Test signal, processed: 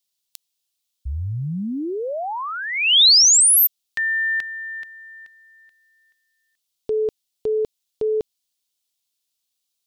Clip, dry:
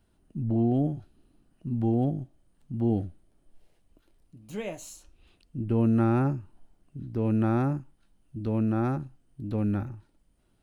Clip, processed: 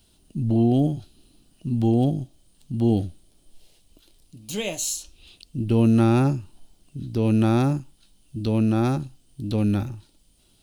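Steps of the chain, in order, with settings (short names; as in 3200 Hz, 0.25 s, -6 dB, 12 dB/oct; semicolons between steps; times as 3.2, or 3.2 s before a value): resonant high shelf 2500 Hz +11.5 dB, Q 1.5; gain +5.5 dB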